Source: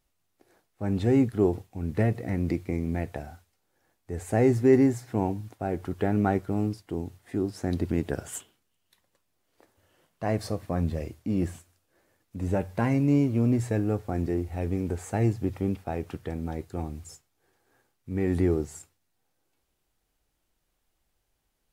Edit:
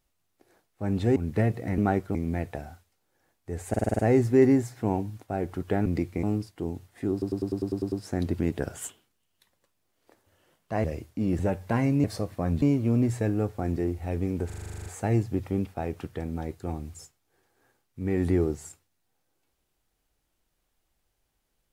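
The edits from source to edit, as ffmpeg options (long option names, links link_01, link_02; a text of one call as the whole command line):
ffmpeg -i in.wav -filter_complex "[0:a]asplit=34[link_01][link_02][link_03][link_04][link_05][link_06][link_07][link_08][link_09][link_10][link_11][link_12][link_13][link_14][link_15][link_16][link_17][link_18][link_19][link_20][link_21][link_22][link_23][link_24][link_25][link_26][link_27][link_28][link_29][link_30][link_31][link_32][link_33][link_34];[link_01]atrim=end=1.162[link_35];[link_02]atrim=start=1.768:end=2.392[link_36];[link_03]atrim=start=6.168:end=6.542[link_37];[link_04]atrim=start=2.758:end=4.352[link_38];[link_05]atrim=start=4.298:end=4.352[link_39];[link_06]atrim=start=4.298:end=4.352[link_40];[link_07]atrim=start=4.298:end=4.352[link_41];[link_08]atrim=start=4.298:end=4.352[link_42];[link_09]atrim=start=4.298:end=4.352[link_43];[link_10]atrim=start=4.298:end=6.172[link_44];[link_11]atrim=start=2.388:end=2.762[link_45];[link_12]atrim=start=6.538:end=7.532[link_46];[link_13]atrim=start=7.428:end=7.532[link_47];[link_14]atrim=start=7.428:end=7.532[link_48];[link_15]atrim=start=7.428:end=7.532[link_49];[link_16]atrim=start=7.428:end=7.532[link_50];[link_17]atrim=start=7.428:end=7.532[link_51];[link_18]atrim=start=7.428:end=7.532[link_52];[link_19]atrim=start=7.428:end=7.532[link_53];[link_20]atrim=start=7.428:end=10.352[link_54];[link_21]atrim=start=10.928:end=11.482[link_55];[link_22]atrim=start=12.468:end=13.122[link_56];[link_23]atrim=start=10.348:end=10.932[link_57];[link_24]atrim=start=13.118:end=15.002[link_58];[link_25]atrim=start=14.958:end=15.002[link_59];[link_26]atrim=start=14.958:end=15.002[link_60];[link_27]atrim=start=14.958:end=15.002[link_61];[link_28]atrim=start=14.958:end=15.002[link_62];[link_29]atrim=start=14.958:end=15.002[link_63];[link_30]atrim=start=14.958:end=15.002[link_64];[link_31]atrim=start=14.958:end=15.002[link_65];[link_32]atrim=start=14.958:end=15.002[link_66];[link_33]atrim=start=14.958:end=15.002[link_67];[link_34]atrim=start=14.958[link_68];[link_35][link_36]acrossfade=duration=0.004:curve1=hsin:curve2=hsin[link_69];[link_69][link_37]acrossfade=duration=0.004:curve1=hsin:curve2=hsin[link_70];[link_70][link_38]acrossfade=duration=0.004:curve1=hsin:curve2=hsin[link_71];[link_71][link_39]acrossfade=duration=0.004:curve1=hsin:curve2=hsin[link_72];[link_72][link_40]acrossfade=duration=0.004:curve1=hsin:curve2=hsin[link_73];[link_73][link_41]acrossfade=duration=0.004:curve1=hsin:curve2=hsin[link_74];[link_74][link_42]acrossfade=duration=0.004:curve1=hsin:curve2=hsin[link_75];[link_75][link_43]acrossfade=duration=0.004:curve1=hsin:curve2=hsin[link_76];[link_76][link_44]acrossfade=duration=0.004:curve1=hsin:curve2=hsin[link_77];[link_77][link_45]acrossfade=duration=0.004:curve1=hsin:curve2=hsin[link_78];[link_78][link_46]acrossfade=duration=0.004:curve1=hsin:curve2=hsin[link_79];[link_79][link_47]acrossfade=duration=0.004:curve1=hsin:curve2=hsin[link_80];[link_80][link_48]acrossfade=duration=0.004:curve1=hsin:curve2=hsin[link_81];[link_81][link_49]acrossfade=duration=0.004:curve1=hsin:curve2=hsin[link_82];[link_82][link_50]acrossfade=duration=0.004:curve1=hsin:curve2=hsin[link_83];[link_83][link_51]acrossfade=duration=0.004:curve1=hsin:curve2=hsin[link_84];[link_84][link_52]acrossfade=duration=0.004:curve1=hsin:curve2=hsin[link_85];[link_85][link_53]acrossfade=duration=0.004:curve1=hsin:curve2=hsin[link_86];[link_86][link_54]acrossfade=duration=0.004:curve1=hsin:curve2=hsin[link_87];[link_87][link_55]acrossfade=duration=0.004:curve1=hsin:curve2=hsin[link_88];[link_88][link_56]acrossfade=duration=0.004:curve1=hsin:curve2=hsin[link_89];[link_89][link_57]acrossfade=duration=0.004:curve1=hsin:curve2=hsin[link_90];[link_90][link_58]acrossfade=duration=0.004:curve1=hsin:curve2=hsin[link_91];[link_91][link_59]acrossfade=duration=0.004:curve1=hsin:curve2=hsin[link_92];[link_92][link_60]acrossfade=duration=0.004:curve1=hsin:curve2=hsin[link_93];[link_93][link_61]acrossfade=duration=0.004:curve1=hsin:curve2=hsin[link_94];[link_94][link_62]acrossfade=duration=0.004:curve1=hsin:curve2=hsin[link_95];[link_95][link_63]acrossfade=duration=0.004:curve1=hsin:curve2=hsin[link_96];[link_96][link_64]acrossfade=duration=0.004:curve1=hsin:curve2=hsin[link_97];[link_97][link_65]acrossfade=duration=0.004:curve1=hsin:curve2=hsin[link_98];[link_98][link_66]acrossfade=duration=0.004:curve1=hsin:curve2=hsin[link_99];[link_99][link_67]acrossfade=duration=0.004:curve1=hsin:curve2=hsin[link_100];[link_100][link_68]acrossfade=duration=0.004:curve1=hsin:curve2=hsin" out.wav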